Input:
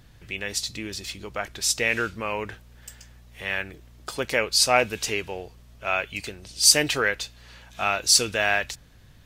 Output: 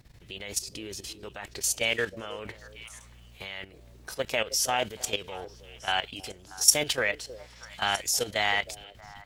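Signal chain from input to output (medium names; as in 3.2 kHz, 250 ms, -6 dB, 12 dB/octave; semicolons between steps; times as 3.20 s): formant shift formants +3 st; level held to a coarse grid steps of 13 dB; repeats whose band climbs or falls 316 ms, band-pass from 420 Hz, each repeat 1.4 oct, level -11.5 dB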